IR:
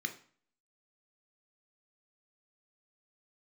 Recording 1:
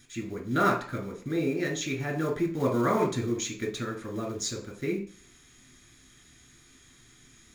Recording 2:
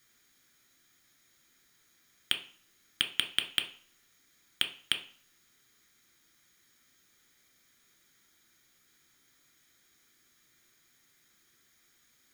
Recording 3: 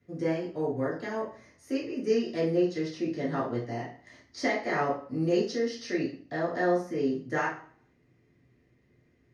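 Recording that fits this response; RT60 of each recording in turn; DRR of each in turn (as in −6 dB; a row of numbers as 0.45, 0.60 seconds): 2; 0.45, 0.45, 0.45 seconds; 0.0, 5.5, −9.0 decibels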